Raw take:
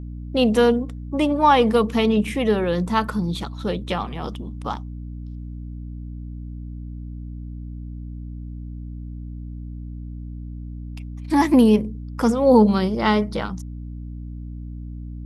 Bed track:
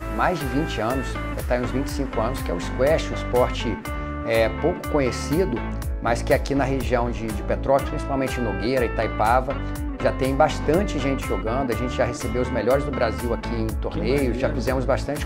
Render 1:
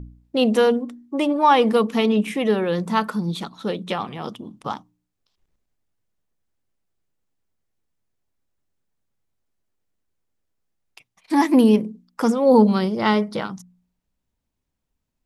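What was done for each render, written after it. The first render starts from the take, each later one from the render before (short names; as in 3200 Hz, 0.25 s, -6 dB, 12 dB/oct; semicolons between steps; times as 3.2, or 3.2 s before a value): de-hum 60 Hz, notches 5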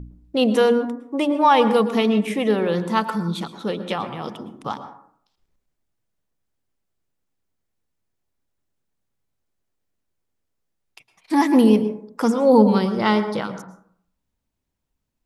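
plate-style reverb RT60 0.63 s, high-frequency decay 0.35×, pre-delay 0.1 s, DRR 10.5 dB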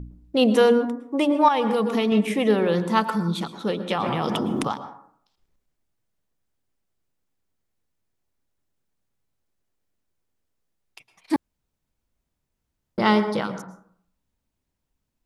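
1.48–2.12 compressor, threshold -18 dBFS; 3.93–4.68 fast leveller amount 100%; 11.36–12.98 room tone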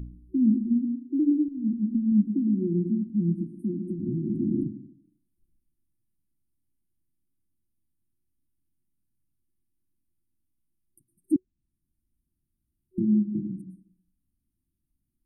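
treble ducked by the level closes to 800 Hz, closed at -19 dBFS; FFT band-reject 370–8500 Hz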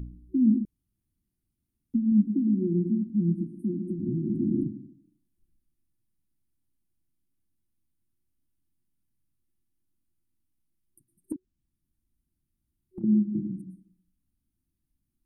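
0.65–1.94 room tone; 11.32–13.04 compressor, threshold -35 dBFS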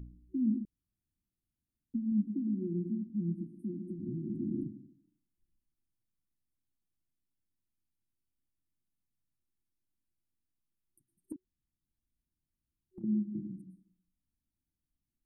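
gain -9 dB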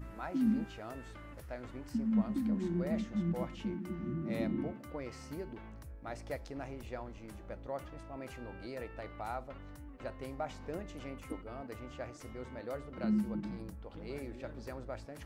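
add bed track -21.5 dB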